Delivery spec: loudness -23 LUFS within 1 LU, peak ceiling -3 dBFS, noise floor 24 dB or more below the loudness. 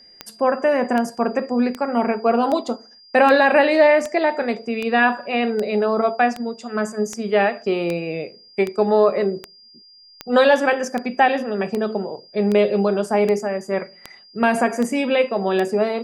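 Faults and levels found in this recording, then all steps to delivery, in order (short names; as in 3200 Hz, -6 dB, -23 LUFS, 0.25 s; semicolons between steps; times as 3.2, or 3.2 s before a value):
clicks 21; steady tone 4800 Hz; tone level -46 dBFS; loudness -19.5 LUFS; peak -3.5 dBFS; loudness target -23.0 LUFS
-> de-click; notch 4800 Hz, Q 30; gain -3.5 dB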